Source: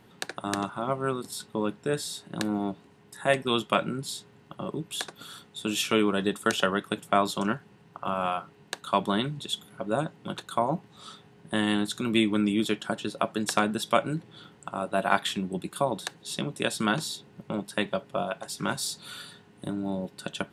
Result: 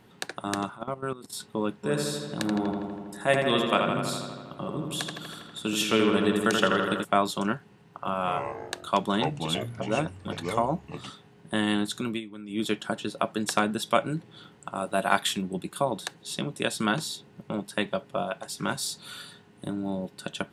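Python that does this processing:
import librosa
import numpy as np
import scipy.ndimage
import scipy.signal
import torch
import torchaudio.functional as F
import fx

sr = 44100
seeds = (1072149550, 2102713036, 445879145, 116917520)

y = fx.level_steps(x, sr, step_db=15, at=(0.71, 1.33))
y = fx.echo_filtered(y, sr, ms=81, feedback_pct=75, hz=4400.0, wet_db=-4, at=(1.83, 7.03), fade=0.02)
y = fx.echo_pitch(y, sr, ms=91, semitones=-4, count=3, db_per_echo=-6.0, at=(8.18, 11.1))
y = fx.high_shelf(y, sr, hz=5600.0, db=9.0, at=(14.75, 15.42))
y = fx.edit(y, sr, fx.fade_down_up(start_s=11.96, length_s=0.77, db=-16.5, fade_s=0.25, curve='qsin'), tone=tone)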